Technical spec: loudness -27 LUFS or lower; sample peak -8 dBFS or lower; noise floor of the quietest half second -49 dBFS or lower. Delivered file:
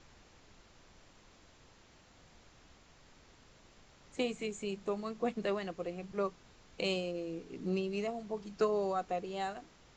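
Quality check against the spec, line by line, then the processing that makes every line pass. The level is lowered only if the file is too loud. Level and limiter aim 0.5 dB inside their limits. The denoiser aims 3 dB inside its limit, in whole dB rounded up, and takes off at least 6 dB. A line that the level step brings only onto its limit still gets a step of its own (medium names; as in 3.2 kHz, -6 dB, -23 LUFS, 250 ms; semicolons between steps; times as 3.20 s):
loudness -37.0 LUFS: pass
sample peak -20.0 dBFS: pass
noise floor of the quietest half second -62 dBFS: pass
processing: none needed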